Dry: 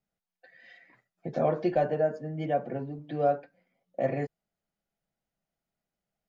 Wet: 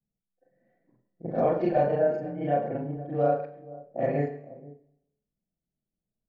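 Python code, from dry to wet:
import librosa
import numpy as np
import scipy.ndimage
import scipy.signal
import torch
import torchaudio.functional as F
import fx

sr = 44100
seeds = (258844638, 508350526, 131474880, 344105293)

p1 = fx.frame_reverse(x, sr, frame_ms=97.0)
p2 = p1 + fx.echo_multitap(p1, sr, ms=(107, 480), db=(-14.0, -18.0), dry=0)
p3 = fx.env_lowpass(p2, sr, base_hz=320.0, full_db=-28.5)
p4 = fx.high_shelf(p3, sr, hz=3100.0, db=-11.0)
p5 = fx.rev_schroeder(p4, sr, rt60_s=0.82, comb_ms=27, drr_db=12.5)
y = p5 * 10.0 ** (6.0 / 20.0)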